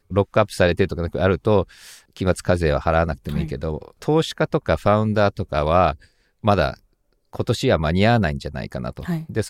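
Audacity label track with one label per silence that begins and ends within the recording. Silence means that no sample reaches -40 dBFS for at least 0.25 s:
6.050000	6.440000	silence
6.760000	7.330000	silence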